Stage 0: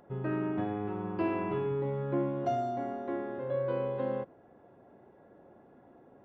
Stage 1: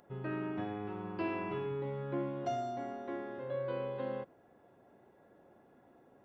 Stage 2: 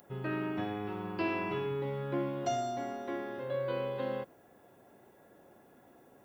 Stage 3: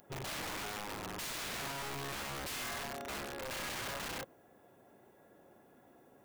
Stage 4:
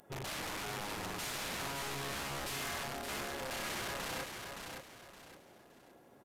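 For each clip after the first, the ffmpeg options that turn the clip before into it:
ffmpeg -i in.wav -af "highshelf=frequency=2100:gain=10.5,volume=-6dB" out.wav
ffmpeg -i in.wav -af "crystalizer=i=3:c=0,volume=2.5dB" out.wav
ffmpeg -i in.wav -af "aeval=exprs='(mod(47.3*val(0)+1,2)-1)/47.3':channel_layout=same,volume=-2.5dB" out.wav
ffmpeg -i in.wav -filter_complex "[0:a]asplit=2[link_01][link_02];[link_02]aecho=0:1:568|1136|1704|2272:0.531|0.17|0.0544|0.0174[link_03];[link_01][link_03]amix=inputs=2:normalize=0,aresample=32000,aresample=44100" out.wav

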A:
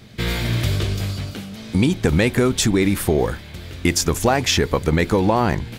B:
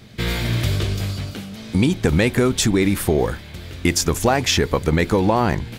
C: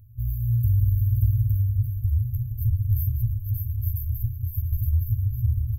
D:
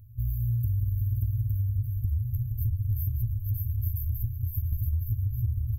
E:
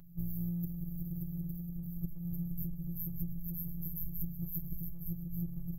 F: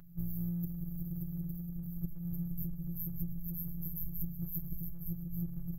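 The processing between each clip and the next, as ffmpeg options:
ffmpeg -i in.wav -af anull out.wav
ffmpeg -i in.wav -af "aecho=1:1:41|143|580|691|863:0.282|0.112|0.708|0.178|0.668,afftfilt=real='re*(1-between(b*sr/4096,120,12000))':imag='im*(1-between(b*sr/4096,120,12000))':win_size=4096:overlap=0.75" out.wav
ffmpeg -i in.wav -af "acompressor=threshold=-24dB:ratio=6" out.wav
ffmpeg -i in.wav -af "acompressor=threshold=-28dB:ratio=6,afftfilt=real='hypot(re,im)*cos(PI*b)':imag='0':win_size=1024:overlap=0.75,volume=4.5dB" out.wav
ffmpeg -i in.wav -af "equalizer=frequency=1500:width_type=o:width=1.1:gain=6" out.wav

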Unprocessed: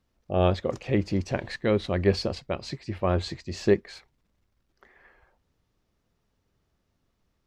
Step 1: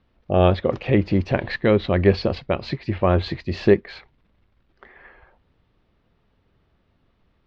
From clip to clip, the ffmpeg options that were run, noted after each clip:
ffmpeg -i in.wav -filter_complex "[0:a]lowpass=frequency=3800:width=0.5412,lowpass=frequency=3800:width=1.3066,asplit=2[link_01][link_02];[link_02]acompressor=threshold=-29dB:ratio=6,volume=-1.5dB[link_03];[link_01][link_03]amix=inputs=2:normalize=0,volume=4dB" out.wav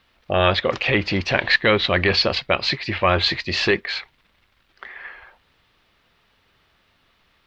ffmpeg -i in.wav -af "apsyclip=13dB,tiltshelf=frequency=820:gain=-10,volume=-7.5dB" out.wav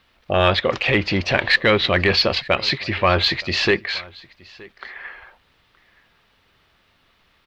ffmpeg -i in.wav -filter_complex "[0:a]asplit=2[link_01][link_02];[link_02]asoftclip=type=tanh:threshold=-11dB,volume=-9.5dB[link_03];[link_01][link_03]amix=inputs=2:normalize=0,aecho=1:1:921:0.0668,volume=-1dB" out.wav

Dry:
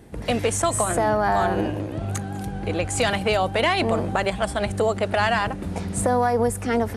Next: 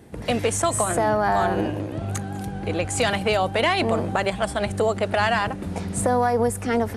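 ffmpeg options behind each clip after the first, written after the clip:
ffmpeg -i in.wav -af "highpass=61" out.wav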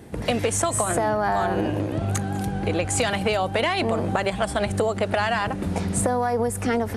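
ffmpeg -i in.wav -af "acompressor=threshold=-23dB:ratio=6,volume=4dB" out.wav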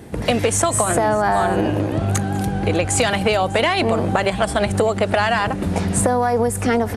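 ffmpeg -i in.wav -af "aecho=1:1:598:0.0841,volume=5dB" out.wav

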